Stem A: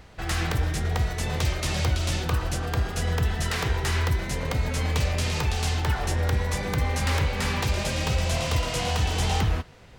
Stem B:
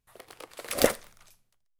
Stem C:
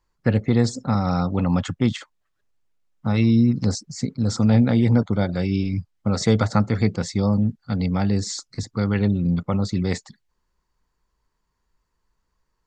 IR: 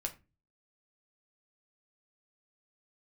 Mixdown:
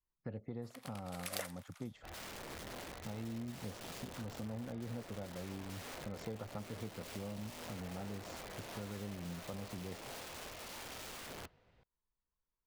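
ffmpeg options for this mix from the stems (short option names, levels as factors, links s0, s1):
-filter_complex "[0:a]lowpass=4500,aeval=exprs='(mod(15.8*val(0)+1,2)-1)/15.8':c=same,adelay=1850,volume=0.1[s0];[1:a]highpass=1100,adelay=550,volume=0.841[s1];[2:a]highshelf=f=2200:g=-8.5,volume=0.106[s2];[s0][s1][s2]amix=inputs=3:normalize=0,adynamicequalizer=threshold=0.00158:dfrequency=580:dqfactor=1.1:tfrequency=580:tqfactor=1.1:attack=5:release=100:ratio=0.375:range=3.5:mode=boostabove:tftype=bell,acompressor=threshold=0.00794:ratio=3"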